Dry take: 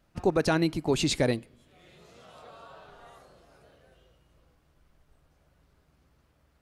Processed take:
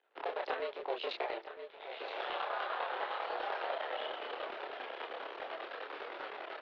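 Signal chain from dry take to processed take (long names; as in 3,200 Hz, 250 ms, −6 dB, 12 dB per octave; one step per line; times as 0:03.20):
sub-harmonics by changed cycles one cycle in 2, muted
camcorder AGC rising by 23 dB per second
in parallel at −8.5 dB: centre clipping without the shift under −41 dBFS
on the sum: single-sideband voice off tune +110 Hz 310–3,600 Hz
shaped tremolo saw down 10 Hz, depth 70%
downward compressor 3 to 1, threshold −37 dBFS, peak gain reduction 11.5 dB
on a send: single-tap delay 971 ms −11.5 dB
on the sum: multi-voice chorus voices 6, 0.31 Hz, delay 29 ms, depth 4.7 ms
level +4.5 dB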